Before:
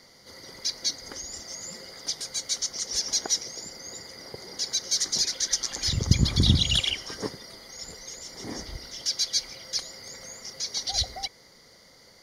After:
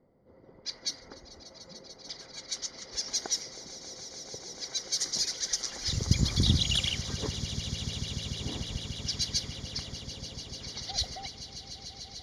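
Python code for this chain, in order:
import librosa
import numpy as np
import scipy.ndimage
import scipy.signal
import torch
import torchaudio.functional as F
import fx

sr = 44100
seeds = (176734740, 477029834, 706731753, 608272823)

y = fx.env_lowpass(x, sr, base_hz=500.0, full_db=-22.0)
y = fx.echo_swell(y, sr, ms=147, loudest=8, wet_db=-17.0)
y = y * librosa.db_to_amplitude(-4.5)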